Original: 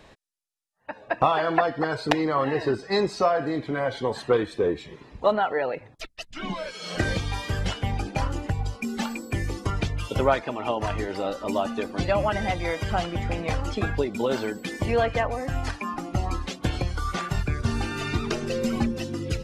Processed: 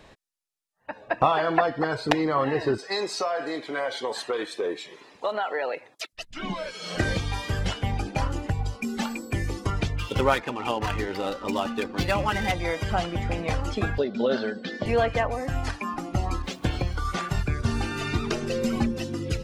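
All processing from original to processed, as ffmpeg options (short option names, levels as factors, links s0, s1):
-filter_complex "[0:a]asettb=1/sr,asplit=3[s0][s1][s2];[s0]atrim=end=2.784[s3];[s1]atrim=start=2.78:end=6.13,asetpts=PTS-STARTPTS,afade=t=in:d=0.004:c=qsin,afade=t=out:st=3.346:d=0.004:c=qsin,highpass=390,equalizer=f=10000:t=o:w=3:g=7,acompressor=threshold=0.0708:ratio=4:attack=3.2:release=140:knee=1:detection=peak[s4];[s2]atrim=start=6.126[s5];[s3][s4]acrossfade=d=0.004:c1=hsin:c2=qsin[s6];[s6][s5]acrossfade=d=0.004:c1=qsin:c2=hsin,asettb=1/sr,asplit=3[s7][s8][s9];[s7]atrim=end=9.964[s10];[s8]atrim=start=9.96:end=12.52,asetpts=PTS-STARTPTS,afade=t=in:d=0.004:c=qsin,afade=t=out:st=2.556:d=0.004:c=qsin,highshelf=f=2300:g=8,bandreject=f=640:w=5.2,adynamicsmooth=sensitivity=6.5:basefreq=1800[s11];[s9]atrim=start=12.516[s12];[s10][s11]acrossfade=d=0.004:c1=hsin:c2=qsin[s13];[s13][s12]acrossfade=d=0.004:c1=qsin:c2=hsin,asettb=1/sr,asplit=3[s14][s15][s16];[s14]atrim=end=13.984[s17];[s15]atrim=start=13.98:end=14.86,asetpts=PTS-STARTPTS,afade=t=in:d=0.004:c=qsin,afade=t=out:st=0.876:d=0.004:c=qsin,highpass=180,equalizer=f=230:t=q:w=4:g=5,equalizer=f=590:t=q:w=4:g=5,equalizer=f=950:t=q:w=4:g=-9,equalizer=f=1600:t=q:w=4:g=5,equalizer=f=2300:t=q:w=4:g=-9,equalizer=f=4000:t=q:w=4:g=4,lowpass=f=4900:w=0.5412,lowpass=f=4900:w=1.3066,bandreject=f=310:w=5.2[s18];[s16]atrim=start=14.856[s19];[s17][s18]acrossfade=d=0.004:c1=hsin:c2=qsin[s20];[s20][s19]acrossfade=d=0.004:c1=qsin:c2=hsin,asettb=1/sr,asplit=3[s21][s22][s23];[s21]atrim=end=16.424[s24];[s22]atrim=start=16.42:end=17.05,asetpts=PTS-STARTPTS,afade=t=in:d=0.004:c=qsin,afade=t=out:st=0.626:d=0.004:c=qsin,aeval=exprs='val(0)*gte(abs(val(0)),0.00376)':c=same,adynamicequalizer=threshold=0.00282:dfrequency=5300:dqfactor=0.7:tfrequency=5300:tqfactor=0.7:attack=5:release=100:ratio=0.375:range=3.5:mode=cutabove:tftype=highshelf[s25];[s23]atrim=start=17.046[s26];[s24][s25]acrossfade=d=0.004:c1=hsin:c2=qsin[s27];[s27][s26]acrossfade=d=0.004:c1=qsin:c2=hsin"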